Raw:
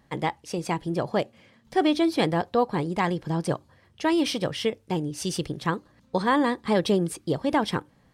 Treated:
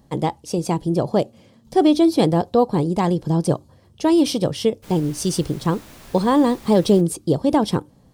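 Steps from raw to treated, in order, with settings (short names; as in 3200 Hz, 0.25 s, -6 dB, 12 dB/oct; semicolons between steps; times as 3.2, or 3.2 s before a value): bell 1900 Hz -14.5 dB 1.6 oct; 4.82–7 added noise pink -52 dBFS; gain +8.5 dB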